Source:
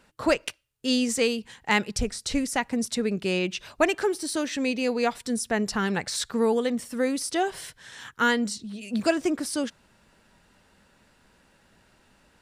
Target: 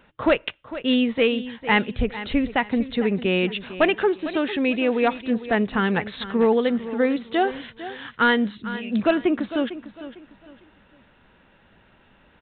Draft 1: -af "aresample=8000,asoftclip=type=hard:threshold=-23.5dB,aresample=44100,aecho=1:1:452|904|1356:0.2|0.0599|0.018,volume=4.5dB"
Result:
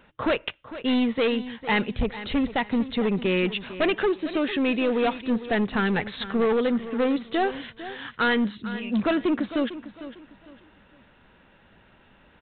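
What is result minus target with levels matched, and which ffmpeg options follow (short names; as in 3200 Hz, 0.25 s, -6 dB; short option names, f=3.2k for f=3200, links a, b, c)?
hard clip: distortion +12 dB
-af "aresample=8000,asoftclip=type=hard:threshold=-15dB,aresample=44100,aecho=1:1:452|904|1356:0.2|0.0599|0.018,volume=4.5dB"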